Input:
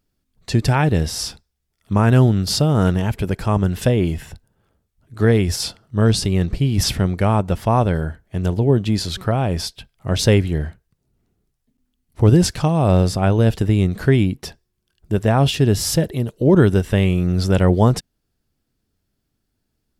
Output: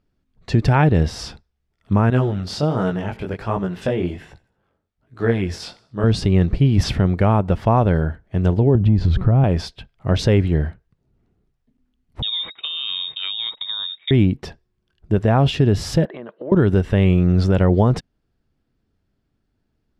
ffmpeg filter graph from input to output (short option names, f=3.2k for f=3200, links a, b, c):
-filter_complex "[0:a]asettb=1/sr,asplit=3[a][b][c];[a]atrim=end=2.104[d];[b]atrim=start=2.1:end=6.04,asetpts=PTS-STARTPTS,afade=t=in:d=0.004:c=qsin,afade=t=out:st=3.936:d=0.004:c=qsin,lowshelf=f=210:g=-10,aecho=1:1:83|166|249:0.0794|0.0334|0.014,atrim=end_sample=173754,flanger=delay=15.5:depth=7.6:speed=1.3[e];[c]atrim=start=6.036[f];[d][e]acrossfade=d=0.004:c1=hsin:c2=qsin[g];[g][f]acrossfade=d=0.004:c1=qsin:c2=hsin,asettb=1/sr,asplit=3[h][i][j];[h]atrim=end=8.754[k];[i]atrim=start=8.75:end=9.44,asetpts=PTS-STARTPTS,afade=t=in:d=0.004:c=qsin,afade=t=out:st=0.686:d=0.004:c=qsin,aemphasis=mode=reproduction:type=riaa,acompressor=threshold=-14dB:ratio=5:attack=3.2:release=140:knee=1:detection=peak[l];[j]atrim=start=9.436[m];[k][l]acrossfade=d=0.004:c1=hsin:c2=qsin[n];[n][m]acrossfade=d=0.004:c1=qsin:c2=hsin,asettb=1/sr,asplit=3[o][p][q];[o]atrim=end=12.224[r];[p]atrim=start=12.22:end=14.11,asetpts=PTS-STARTPTS,afade=t=in:d=0.004:c=qsin,afade=t=out:st=1.886:d=0.004:c=qsin,agate=range=-22dB:threshold=-26dB:ratio=16:release=100:detection=peak,lowpass=f=3.2k:t=q:w=0.5098,lowpass=f=3.2k:t=q:w=0.6013,lowpass=f=3.2k:t=q:w=0.9,lowpass=f=3.2k:t=q:w=2.563,afreqshift=-3800,acompressor=threshold=-26dB:ratio=2:attack=3.2:release=140:knee=1:detection=peak[s];[q]atrim=start=14.106[t];[r][s]acrossfade=d=0.004:c1=hsin:c2=qsin[u];[u][t]acrossfade=d=0.004:c1=qsin:c2=hsin,asettb=1/sr,asplit=3[v][w][x];[v]atrim=end=16.054[y];[w]atrim=start=16.05:end=16.52,asetpts=PTS-STARTPTS,afade=t=in:d=0.004:c=qsin,afade=t=out:st=0.466:d=0.004:c=qsin,highpass=f=240:w=0.5412,highpass=f=240:w=1.3066,equalizer=f=260:t=q:w=4:g=-10,equalizer=f=410:t=q:w=4:g=-7,equalizer=f=630:t=q:w=4:g=4,equalizer=f=1.1k:t=q:w=4:g=7,equalizer=f=1.6k:t=q:w=4:g=7,equalizer=f=2.7k:t=q:w=4:g=-3,lowpass=f=3k:w=0.5412,lowpass=f=3k:w=1.3066,acompressor=threshold=-33dB:ratio=3:attack=3.2:release=140:knee=1:detection=peak[z];[x]atrim=start=16.516[aa];[y][z]acrossfade=d=0.004:c1=hsin:c2=qsin[ab];[ab][aa]acrossfade=d=0.004:c1=qsin:c2=hsin,lowpass=f=3.9k:p=1,aemphasis=mode=reproduction:type=50kf,alimiter=limit=-8.5dB:level=0:latency=1:release=78,volume=3dB"